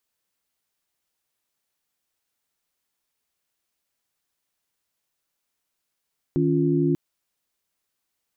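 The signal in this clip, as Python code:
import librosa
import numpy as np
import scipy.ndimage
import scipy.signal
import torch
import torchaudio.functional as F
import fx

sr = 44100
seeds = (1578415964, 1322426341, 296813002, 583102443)

y = fx.chord(sr, length_s=0.59, notes=(51, 61, 65), wave='sine', level_db=-22.5)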